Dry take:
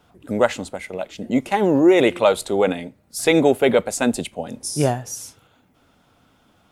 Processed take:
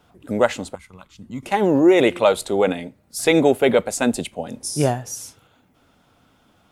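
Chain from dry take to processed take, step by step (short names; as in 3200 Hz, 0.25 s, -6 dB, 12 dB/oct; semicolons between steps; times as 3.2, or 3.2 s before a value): 0.75–1.43 EQ curve 110 Hz 0 dB, 650 Hz -26 dB, 1100 Hz 0 dB, 1800 Hz -15 dB, 2800 Hz -12 dB, 4500 Hz -8 dB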